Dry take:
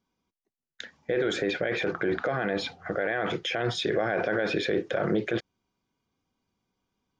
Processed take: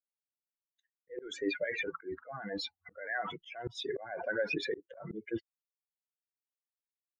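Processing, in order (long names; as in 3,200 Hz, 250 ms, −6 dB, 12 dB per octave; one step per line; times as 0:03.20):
spectral dynamics exaggerated over time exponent 3
volume swells 292 ms
level +2.5 dB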